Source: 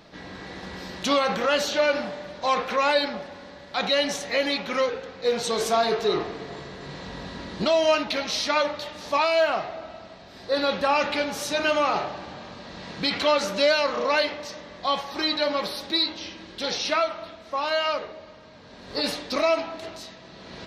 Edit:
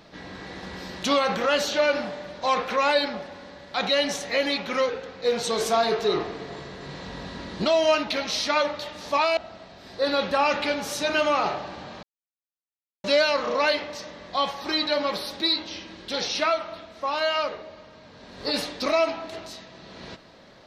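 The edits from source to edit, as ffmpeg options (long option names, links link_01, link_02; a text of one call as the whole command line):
ffmpeg -i in.wav -filter_complex "[0:a]asplit=4[link_01][link_02][link_03][link_04];[link_01]atrim=end=9.372[link_05];[link_02]atrim=start=9.868:end=12.53,asetpts=PTS-STARTPTS,afade=type=out:start_time=2.658:duration=0.004:curve=hsin[link_06];[link_03]atrim=start=12.53:end=13.54,asetpts=PTS-STARTPTS,volume=0[link_07];[link_04]atrim=start=13.54,asetpts=PTS-STARTPTS,afade=type=in:duration=0.004:curve=hsin[link_08];[link_06][link_07][link_08]concat=n=3:v=0:a=1[link_09];[link_05][link_09]acrossfade=duration=0.004:curve1=hsin:curve2=hsin" out.wav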